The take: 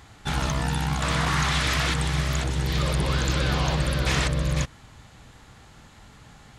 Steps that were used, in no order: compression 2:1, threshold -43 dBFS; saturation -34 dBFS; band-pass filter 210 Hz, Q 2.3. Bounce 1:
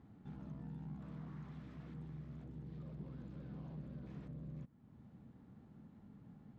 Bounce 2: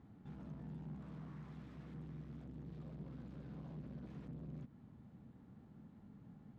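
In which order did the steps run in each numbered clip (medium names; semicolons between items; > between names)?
compression > saturation > band-pass filter; saturation > compression > band-pass filter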